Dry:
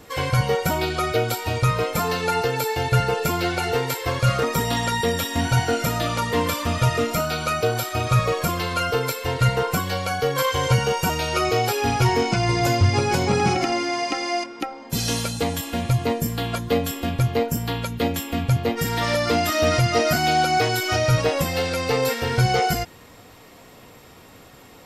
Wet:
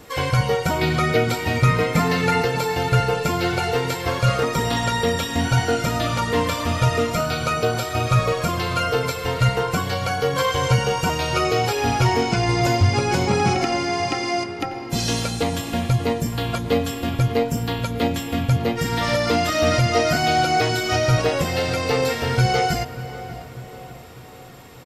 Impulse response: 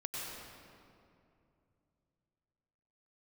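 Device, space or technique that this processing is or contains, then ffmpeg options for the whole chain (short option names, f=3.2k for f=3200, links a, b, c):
compressed reverb return: -filter_complex "[0:a]asplit=2[a][b];[1:a]atrim=start_sample=2205[c];[b][c]afir=irnorm=-1:irlink=0,acompressor=threshold=-23dB:ratio=6,volume=-9.5dB[d];[a][d]amix=inputs=2:normalize=0,acrossover=split=8400[e][f];[f]acompressor=threshold=-43dB:ratio=4:attack=1:release=60[g];[e][g]amix=inputs=2:normalize=0,asettb=1/sr,asplit=3[h][i][j];[h]atrim=end=0.814[k];[i]atrim=start=0.81:end=2.45,asetpts=PTS-STARTPTS,afade=t=in:d=0.004:c=qsin,afade=t=out:st=1.636:d=0.004:c=qsin,equalizer=f=160:t=o:w=0.33:g=10,equalizer=f=250:t=o:w=0.33:g=11,equalizer=f=2k:t=o:w=0.33:g=9[l];[j]atrim=start=2.446[m];[k][l]acrossfade=d=0.004:c1=hsin:c2=qsin[n];[n][m]acrossfade=d=0.004:c1=qsin:c2=hsin,asplit=2[o][p];[p]adelay=594,lowpass=f=2k:p=1,volume=-14.5dB,asplit=2[q][r];[r]adelay=594,lowpass=f=2k:p=1,volume=0.55,asplit=2[s][t];[t]adelay=594,lowpass=f=2k:p=1,volume=0.55,asplit=2[u][v];[v]adelay=594,lowpass=f=2k:p=1,volume=0.55,asplit=2[w][x];[x]adelay=594,lowpass=f=2k:p=1,volume=0.55[y];[o][q][s][u][w][y]amix=inputs=6:normalize=0"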